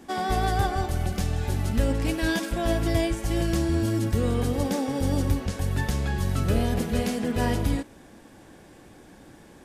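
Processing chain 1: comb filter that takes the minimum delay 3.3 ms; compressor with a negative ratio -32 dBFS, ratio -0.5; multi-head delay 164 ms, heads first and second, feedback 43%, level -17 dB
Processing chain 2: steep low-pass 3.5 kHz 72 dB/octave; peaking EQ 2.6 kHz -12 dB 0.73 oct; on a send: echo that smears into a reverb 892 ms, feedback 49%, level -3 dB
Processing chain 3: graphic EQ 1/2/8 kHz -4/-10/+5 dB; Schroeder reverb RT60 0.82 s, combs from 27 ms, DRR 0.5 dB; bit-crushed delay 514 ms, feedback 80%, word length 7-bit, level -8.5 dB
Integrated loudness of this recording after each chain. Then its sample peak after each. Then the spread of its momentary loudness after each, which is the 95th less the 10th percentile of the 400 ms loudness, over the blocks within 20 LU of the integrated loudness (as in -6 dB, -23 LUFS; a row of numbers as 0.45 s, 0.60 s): -33.5 LUFS, -25.5 LUFS, -24.0 LUFS; -14.5 dBFS, -9.5 dBFS, -9.0 dBFS; 14 LU, 6 LU, 11 LU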